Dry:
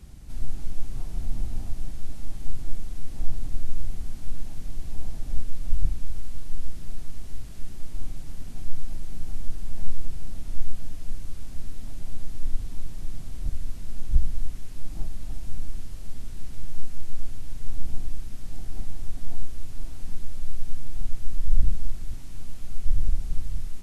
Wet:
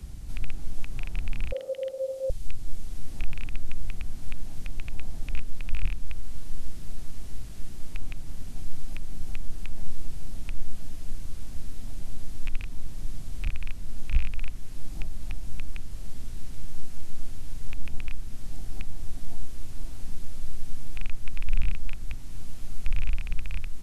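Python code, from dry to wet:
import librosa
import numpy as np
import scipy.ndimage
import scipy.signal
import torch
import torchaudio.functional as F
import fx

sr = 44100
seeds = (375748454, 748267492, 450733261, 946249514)

y = fx.rattle_buzz(x, sr, strikes_db=-30.0, level_db=-23.0)
y = fx.ring_mod(y, sr, carrier_hz=530.0, at=(1.52, 2.3))
y = fx.band_squash(y, sr, depth_pct=40)
y = F.gain(torch.from_numpy(y), -2.5).numpy()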